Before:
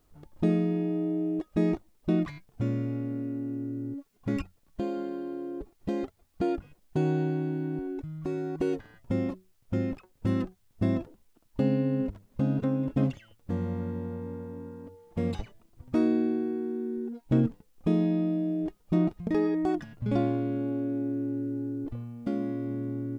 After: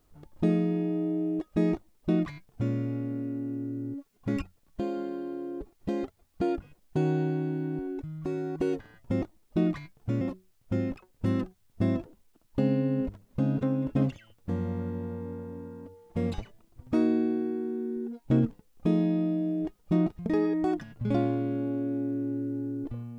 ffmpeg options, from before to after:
ffmpeg -i in.wav -filter_complex "[0:a]asplit=3[link_01][link_02][link_03];[link_01]atrim=end=9.222[link_04];[link_02]atrim=start=1.738:end=2.732[link_05];[link_03]atrim=start=9.218[link_06];[link_04][link_05]acrossfade=duration=0.004:curve1=hsin:curve2=hsin[link_07];[link_07][link_06]acrossfade=duration=0.004:curve1=hsin:curve2=hsin" out.wav

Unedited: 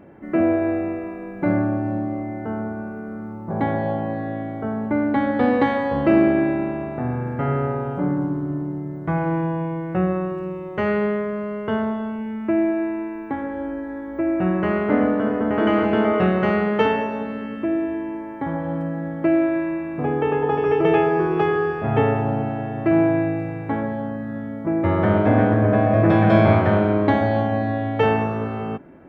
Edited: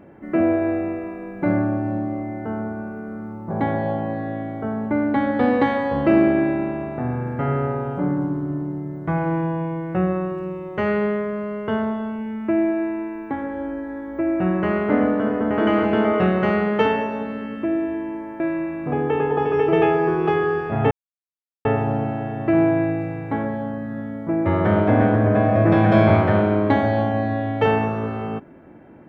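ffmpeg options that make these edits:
ffmpeg -i in.wav -filter_complex "[0:a]asplit=3[link_01][link_02][link_03];[link_01]atrim=end=18.402[link_04];[link_02]atrim=start=19.518:end=22.03,asetpts=PTS-STARTPTS,afade=type=out:start_time=2.508:duration=0.004:curve=hsin,apad=pad_dur=0.74[link_05];[link_03]atrim=start=22.03,asetpts=PTS-STARTPTS,afade=type=in:duration=0.004:curve=hsin[link_06];[link_05][link_06]concat=n=2:v=0:a=1[link_07];[link_04][link_07]acrossfade=duration=0.004:curve1=hsin:curve2=hsin" out.wav

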